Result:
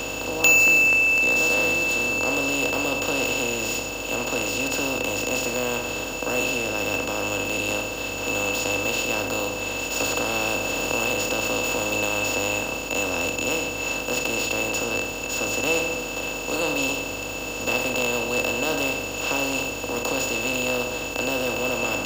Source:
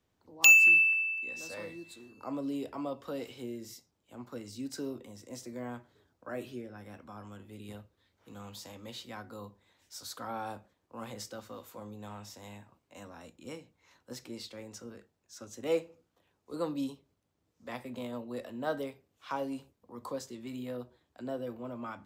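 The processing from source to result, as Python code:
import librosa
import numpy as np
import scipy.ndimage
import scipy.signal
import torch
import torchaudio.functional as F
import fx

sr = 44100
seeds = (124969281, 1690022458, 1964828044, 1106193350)

y = fx.bin_compress(x, sr, power=0.2)
y = fx.peak_eq(y, sr, hz=85.0, db=9.0, octaves=0.77)
y = fx.add_hum(y, sr, base_hz=50, snr_db=20)
y = fx.band_squash(y, sr, depth_pct=100, at=(10.0, 12.53))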